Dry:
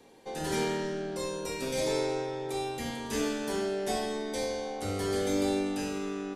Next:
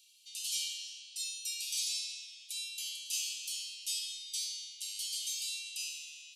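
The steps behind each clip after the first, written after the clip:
Butterworth high-pass 2,700 Hz 72 dB per octave
notch filter 3,500 Hz, Q 13
level +5 dB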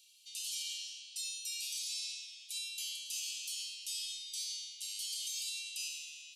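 brickwall limiter −30 dBFS, peak gain reduction 7.5 dB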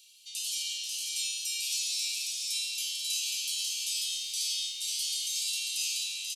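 single-tap delay 541 ms −3.5 dB
on a send at −22.5 dB: convolution reverb, pre-delay 3 ms
on the sum: feedback echo at a low word length 487 ms, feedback 55%, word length 11 bits, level −7.5 dB
level +6 dB

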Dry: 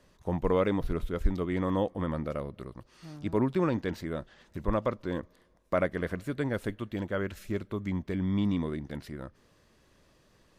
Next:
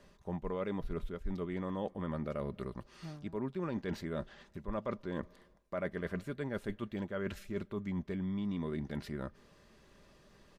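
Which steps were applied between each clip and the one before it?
high-shelf EQ 7,800 Hz −6.5 dB
comb filter 5 ms, depth 34%
reversed playback
downward compressor 6 to 1, threshold −36 dBFS, peak gain reduction 17.5 dB
reversed playback
level +1.5 dB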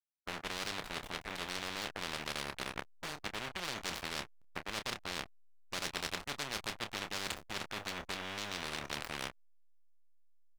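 slack as between gear wheels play −36 dBFS
double-tracking delay 28 ms −11.5 dB
every bin compressed towards the loudest bin 10 to 1
level +6 dB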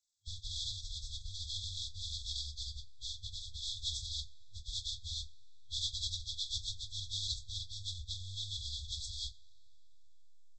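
hearing-aid frequency compression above 1,100 Hz 1.5 to 1
coupled-rooms reverb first 0.4 s, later 3.6 s, from −20 dB, DRR 16 dB
brick-wall band-stop 100–3,300 Hz
level +11 dB

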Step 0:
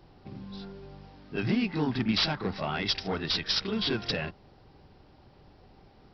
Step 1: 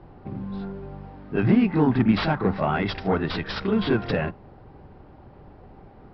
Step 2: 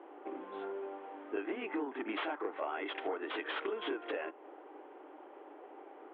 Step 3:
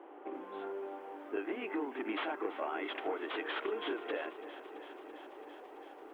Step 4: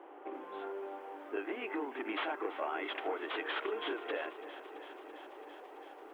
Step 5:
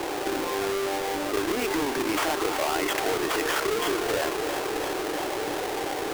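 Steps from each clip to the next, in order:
low-pass filter 1,600 Hz 12 dB per octave; on a send at −24 dB: convolution reverb, pre-delay 3 ms; on the sum: level +9 dB
Chebyshev band-pass filter 300–3,300 Hz, order 5; downward compressor 12 to 1, threshold −34 dBFS, peak gain reduction 17 dB
feedback echo at a low word length 334 ms, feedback 80%, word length 11 bits, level −15 dB
parametric band 140 Hz −12.5 dB 1.5 octaves; level +1.5 dB
each half-wave held at its own peak; envelope flattener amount 70%; level +5 dB

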